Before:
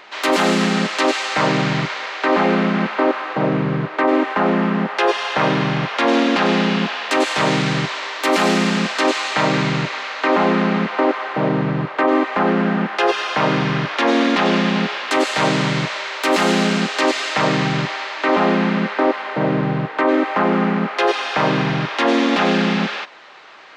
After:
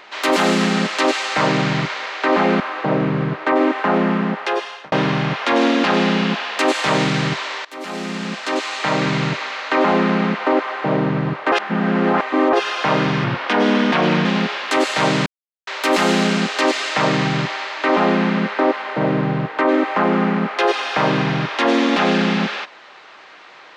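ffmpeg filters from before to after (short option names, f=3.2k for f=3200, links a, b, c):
-filter_complex "[0:a]asplit=10[a][b][c][d][e][f][g][h][i][j];[a]atrim=end=2.602[k];[b]atrim=start=3.118:end=5.44,asetpts=PTS-STARTPTS,afade=t=out:st=1.402:d=0.92:c=qsin[l];[c]atrim=start=5.44:end=8.17,asetpts=PTS-STARTPTS,afade=t=in:d=0.004:c=hsin,afade=t=out:st=2.726:d=0.004:c=hsin:silence=0.1[m];[d]atrim=start=8.17:end=12.042,asetpts=PTS-STARTPTS,afade=t=in:d=1.6:silence=0.1[n];[e]atrim=start=12.038:end=13.052,asetpts=PTS-STARTPTS,areverse[o];[f]atrim=start=13.048:end=13.764[p];[g]atrim=start=13.76:end=14.65,asetpts=PTS-STARTPTS,asetrate=38808,aresample=44100,atrim=end_sample=44601,asetpts=PTS-STARTPTS[q];[h]atrim=start=14.646:end=15.66,asetpts=PTS-STARTPTS,afade=t=out:st=1.01:d=0.004:c=hsin[r];[i]atrim=start=15.66:end=16.07,asetpts=PTS-STARTPTS,volume=0[s];[j]atrim=start=16.07,asetpts=PTS-STARTPTS,afade=t=in:d=0.004:c=hsin[t];[l][m][n]concat=n=3:v=0:a=1[u];[k][u]acrossfade=d=0.004:c1=hsin:c2=hsin[v];[v][o]acrossfade=d=0.004:c1=hsin:c2=hsin[w];[w][p]acrossfade=d=0.004:c1=hsin:c2=hsin[x];[x][q]acrossfade=d=0.004:c1=hsin:c2=hsin[y];[r][s][t]concat=n=3:v=0:a=1[z];[y][z]acrossfade=d=0.004:c1=hsin:c2=hsin"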